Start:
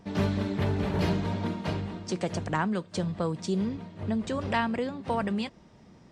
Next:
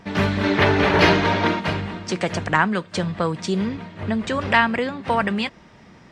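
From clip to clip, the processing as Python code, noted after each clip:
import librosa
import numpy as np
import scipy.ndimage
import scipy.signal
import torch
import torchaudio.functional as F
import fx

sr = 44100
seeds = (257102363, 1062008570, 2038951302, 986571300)

y = fx.spec_box(x, sr, start_s=0.43, length_s=1.17, low_hz=260.0, high_hz=6800.0, gain_db=7)
y = fx.peak_eq(y, sr, hz=1900.0, db=9.5, octaves=2.0)
y = F.gain(torch.from_numpy(y), 5.0).numpy()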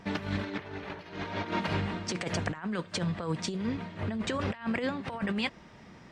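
y = fx.over_compress(x, sr, threshold_db=-24.0, ratio=-0.5)
y = F.gain(torch.from_numpy(y), -8.0).numpy()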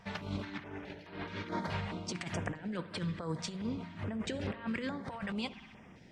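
y = fx.rev_spring(x, sr, rt60_s=1.6, pass_ms=(58,), chirp_ms=45, drr_db=12.5)
y = fx.filter_held_notch(y, sr, hz=4.7, low_hz=310.0, high_hz=6500.0)
y = F.gain(torch.from_numpy(y), -4.5).numpy()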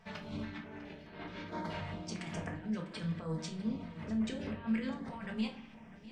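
y = x + 10.0 ** (-17.5 / 20.0) * np.pad(x, (int(650 * sr / 1000.0), 0))[:len(x)]
y = fx.room_shoebox(y, sr, seeds[0], volume_m3=280.0, walls='furnished', distance_m=1.5)
y = F.gain(torch.from_numpy(y), -6.0).numpy()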